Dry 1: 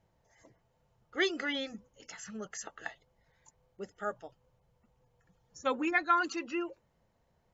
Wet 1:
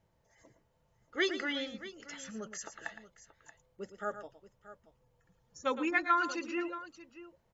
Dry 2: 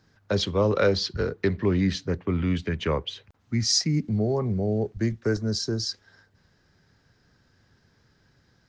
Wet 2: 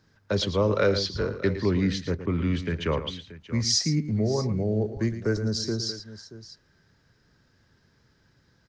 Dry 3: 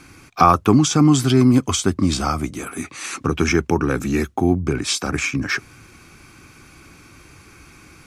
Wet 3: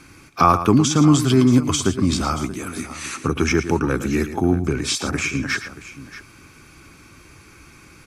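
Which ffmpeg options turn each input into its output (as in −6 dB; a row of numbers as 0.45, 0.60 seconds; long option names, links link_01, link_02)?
-af "bandreject=frequency=750:width=12,aecho=1:1:113|630:0.266|0.168,volume=-1dB"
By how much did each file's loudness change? −1.0, −0.5, −0.5 LU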